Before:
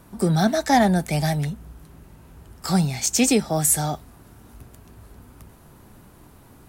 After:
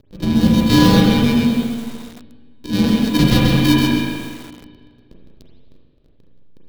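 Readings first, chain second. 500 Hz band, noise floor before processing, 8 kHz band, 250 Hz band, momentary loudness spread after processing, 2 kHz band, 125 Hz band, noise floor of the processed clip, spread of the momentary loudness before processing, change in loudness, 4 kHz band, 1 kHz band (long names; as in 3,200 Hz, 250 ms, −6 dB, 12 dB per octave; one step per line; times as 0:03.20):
+2.0 dB, −50 dBFS, −9.0 dB, +9.5 dB, 14 LU, +5.5 dB, +6.5 dB, −51 dBFS, 12 LU, +5.5 dB, +9.5 dB, −0.5 dB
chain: samples sorted by size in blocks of 64 samples
rotating-speaker cabinet horn 0.8 Hz, later 6.3 Hz, at 0:02.50
on a send: feedback echo with a low-pass in the loop 105 ms, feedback 20%, low-pass 4,200 Hz, level −16.5 dB
on the sum: upward compression, threshold −37 dBFS
harmonic generator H 6 −19 dB, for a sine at −5 dBFS
frequency shifter −390 Hz
soft clipping −12 dBFS, distortion −17 dB
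high-shelf EQ 4,900 Hz +4 dB
slack as between gear wheels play −27.5 dBFS
octave-band graphic EQ 125/250/500/1,000/2,000/4,000/8,000 Hz +5/+4/+7/−7/−4/+9/−6 dB
spring reverb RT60 1.8 s, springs 32/37/43 ms, chirp 50 ms, DRR −2 dB
feedback echo at a low word length 133 ms, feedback 35%, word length 6 bits, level −3.5 dB
level +1 dB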